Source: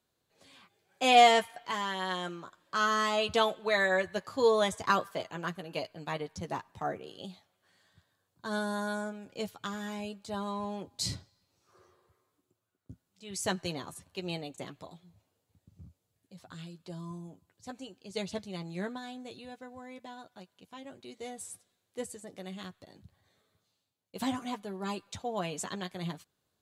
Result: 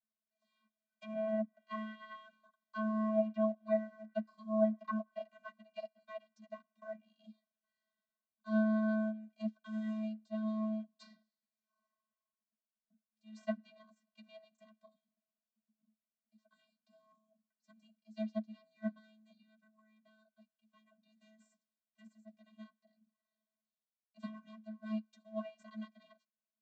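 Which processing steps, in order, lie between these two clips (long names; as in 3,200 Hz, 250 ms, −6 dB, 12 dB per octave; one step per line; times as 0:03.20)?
stylus tracing distortion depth 0.094 ms
treble cut that deepens with the level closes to 680 Hz, closed at −24 dBFS
low-shelf EQ 480 Hz −8.5 dB
in parallel at −9 dB: centre clipping without the shift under −41 dBFS
on the sum: channel vocoder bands 32, square 217 Hz
expander for the loud parts 1.5 to 1, over −49 dBFS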